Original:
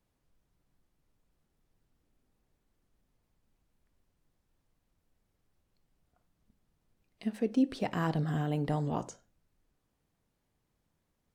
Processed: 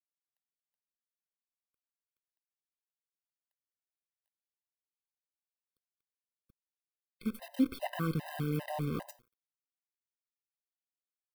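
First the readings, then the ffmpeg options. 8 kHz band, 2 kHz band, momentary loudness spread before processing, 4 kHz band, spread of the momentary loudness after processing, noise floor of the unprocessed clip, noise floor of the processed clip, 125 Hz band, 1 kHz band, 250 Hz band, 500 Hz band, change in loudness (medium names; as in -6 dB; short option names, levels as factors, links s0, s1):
no reading, -1.5 dB, 10 LU, -0.5 dB, 8 LU, -80 dBFS, under -85 dBFS, -3.5 dB, -4.0 dB, -2.5 dB, -4.5 dB, -3.0 dB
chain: -af "aemphasis=mode=production:type=50fm,bandreject=f=860:w=13,bandreject=f=119.2:t=h:w=4,bandreject=f=238.4:t=h:w=4,bandreject=f=357.6:t=h:w=4,bandreject=f=476.8:t=h:w=4,bandreject=f=596:t=h:w=4,bandreject=f=715.2:t=h:w=4,bandreject=f=834.4:t=h:w=4,bandreject=f=953.6:t=h:w=4,bandreject=f=1072.8:t=h:w=4,bandreject=f=1192:t=h:w=4,bandreject=f=1311.2:t=h:w=4,bandreject=f=1430.4:t=h:w=4,bandreject=f=1549.6:t=h:w=4,bandreject=f=1668.8:t=h:w=4,bandreject=f=1788:t=h:w=4,bandreject=f=1907.2:t=h:w=4,bandreject=f=2026.4:t=h:w=4,bandreject=f=2145.6:t=h:w=4,bandreject=f=2264.8:t=h:w=4,acrusher=bits=7:dc=4:mix=0:aa=0.000001,equalizer=f=6700:t=o:w=0.81:g=-13.5,afftfilt=real='re*gt(sin(2*PI*2.5*pts/sr)*(1-2*mod(floor(b*sr/1024/520),2)),0)':imag='im*gt(sin(2*PI*2.5*pts/sr)*(1-2*mod(floor(b*sr/1024/520),2)),0)':win_size=1024:overlap=0.75"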